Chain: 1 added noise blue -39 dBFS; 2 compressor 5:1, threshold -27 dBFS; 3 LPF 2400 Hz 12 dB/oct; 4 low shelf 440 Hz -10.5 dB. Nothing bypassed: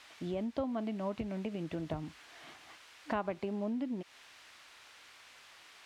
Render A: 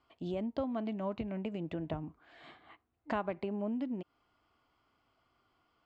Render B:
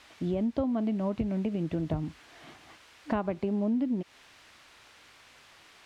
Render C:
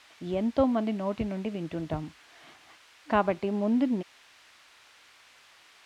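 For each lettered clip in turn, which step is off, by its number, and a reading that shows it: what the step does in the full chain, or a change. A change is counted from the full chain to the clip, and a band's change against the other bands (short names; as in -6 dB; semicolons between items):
1, 4 kHz band -4.0 dB; 4, 125 Hz band +7.0 dB; 2, mean gain reduction 3.5 dB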